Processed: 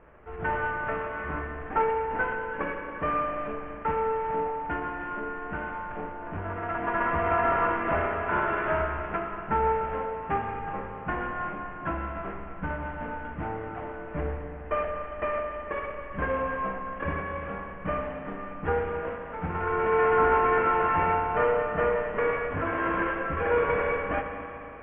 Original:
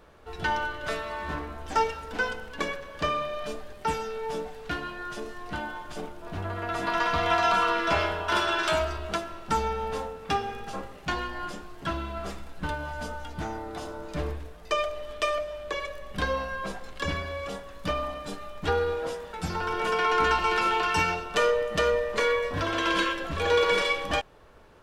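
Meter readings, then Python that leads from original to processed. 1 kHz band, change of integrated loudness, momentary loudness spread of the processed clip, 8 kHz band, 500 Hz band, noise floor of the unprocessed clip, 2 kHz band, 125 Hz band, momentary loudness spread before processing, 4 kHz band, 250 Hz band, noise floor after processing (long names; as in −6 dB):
+1.0 dB, 0.0 dB, 11 LU, below −35 dB, +1.0 dB, −45 dBFS, −1.5 dB, +0.5 dB, 13 LU, below −15 dB, +1.0 dB, −39 dBFS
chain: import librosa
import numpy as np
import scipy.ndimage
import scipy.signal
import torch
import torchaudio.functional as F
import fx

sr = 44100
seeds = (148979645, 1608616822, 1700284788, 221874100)

y = fx.cvsd(x, sr, bps=16000)
y = scipy.signal.sosfilt(scipy.signal.butter(4, 2100.0, 'lowpass', fs=sr, output='sos'), y)
y = fx.rev_spring(y, sr, rt60_s=3.2, pass_ms=(38, 56), chirp_ms=50, drr_db=3.5)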